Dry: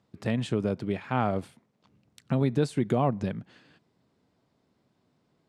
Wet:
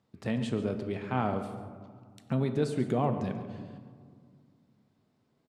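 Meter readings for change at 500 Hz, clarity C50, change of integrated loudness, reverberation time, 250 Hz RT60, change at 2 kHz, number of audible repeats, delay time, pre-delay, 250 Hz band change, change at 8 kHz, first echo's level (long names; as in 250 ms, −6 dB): −2.5 dB, 8.0 dB, −3.5 dB, 2.0 s, 2.8 s, −3.5 dB, 1, 139 ms, 4 ms, −2.5 dB, −3.5 dB, −14.5 dB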